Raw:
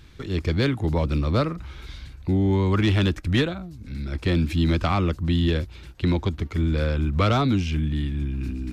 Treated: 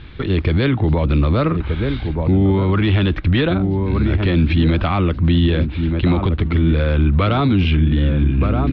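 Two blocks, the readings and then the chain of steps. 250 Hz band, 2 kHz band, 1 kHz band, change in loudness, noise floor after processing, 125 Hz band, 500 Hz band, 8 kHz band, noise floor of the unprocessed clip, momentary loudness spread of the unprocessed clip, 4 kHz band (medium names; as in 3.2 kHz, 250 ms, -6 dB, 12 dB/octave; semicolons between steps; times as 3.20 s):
+7.0 dB, +6.0 dB, +5.0 dB, +6.5 dB, -26 dBFS, +7.5 dB, +6.0 dB, no reading, -44 dBFS, 13 LU, +4.0 dB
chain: steep low-pass 3.8 kHz 36 dB/octave; echo from a far wall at 210 m, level -10 dB; loudness maximiser +19 dB; trim -7.5 dB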